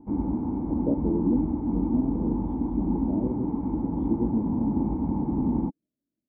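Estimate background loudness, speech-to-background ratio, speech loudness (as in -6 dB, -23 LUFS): -28.5 LUFS, -2.0 dB, -30.5 LUFS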